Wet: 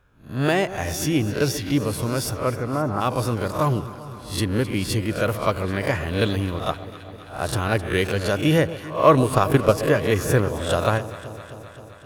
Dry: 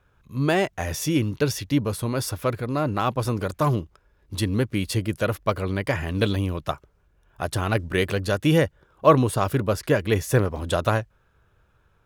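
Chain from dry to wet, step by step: reverse spectral sustain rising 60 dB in 0.38 s; 2.33–3.00 s: low-pass 3.2 kHz -> 1.5 kHz 24 dB/octave; 9.16–9.78 s: transient shaper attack +11 dB, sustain -6 dB; echo whose repeats swap between lows and highs 131 ms, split 990 Hz, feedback 84%, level -14 dB

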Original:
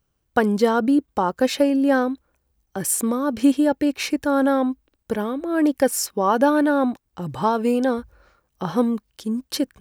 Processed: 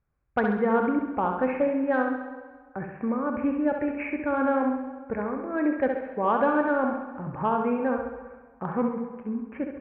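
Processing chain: steep low-pass 2.5 kHz 96 dB/octave; peaking EQ 320 Hz -4.5 dB 1 oct; saturation -7.5 dBFS, distortion -27 dB; flutter echo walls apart 11.4 m, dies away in 0.68 s; plate-style reverb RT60 1.6 s, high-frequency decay 0.75×, DRR 7.5 dB; trim -4.5 dB

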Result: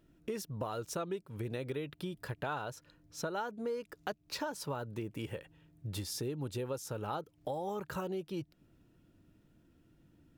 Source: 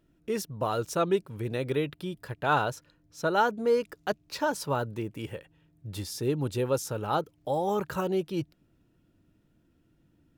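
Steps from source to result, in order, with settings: compression 5:1, threshold -37 dBFS, peak gain reduction 16 dB; trim +1 dB

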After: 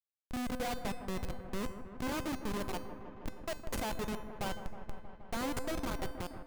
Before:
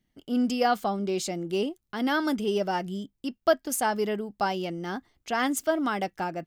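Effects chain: Schmitt trigger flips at -23.5 dBFS; feedback comb 510 Hz, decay 0.57 s, mix 80%; feedback echo behind a low-pass 158 ms, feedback 78%, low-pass 1.6 kHz, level -11 dB; trim +6 dB

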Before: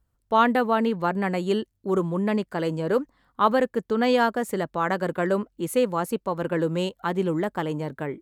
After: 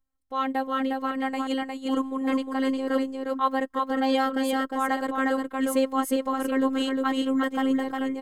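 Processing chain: comb 2.8 ms, depth 55%; level rider gain up to 11.5 dB; robot voice 266 Hz; on a send: delay 357 ms -3.5 dB; on the sum: trim -8 dB

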